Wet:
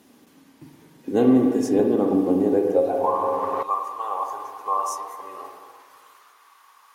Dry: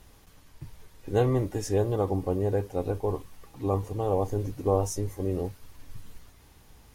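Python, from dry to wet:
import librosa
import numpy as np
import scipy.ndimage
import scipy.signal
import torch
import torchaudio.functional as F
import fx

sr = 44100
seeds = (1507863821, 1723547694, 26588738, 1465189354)

y = fx.filter_sweep_highpass(x, sr, from_hz=250.0, to_hz=1100.0, start_s=2.44, end_s=3.12, q=6.5)
y = fx.rev_spring(y, sr, rt60_s=1.9, pass_ms=(42, 48, 55), chirp_ms=50, drr_db=2.0)
y = fx.band_squash(y, sr, depth_pct=100, at=(1.79, 3.63))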